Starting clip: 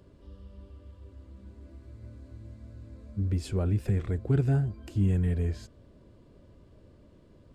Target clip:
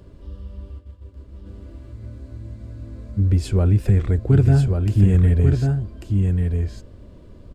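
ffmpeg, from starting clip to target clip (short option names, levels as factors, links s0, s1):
-filter_complex "[0:a]asplit=3[s0][s1][s2];[s0]afade=t=out:st=0.78:d=0.02[s3];[s1]agate=range=0.0224:threshold=0.00794:ratio=3:detection=peak,afade=t=in:st=0.78:d=0.02,afade=t=out:st=1.45:d=0.02[s4];[s2]afade=t=in:st=1.45:d=0.02[s5];[s3][s4][s5]amix=inputs=3:normalize=0,lowshelf=f=68:g=10.5,aecho=1:1:1143:0.596,volume=2.37"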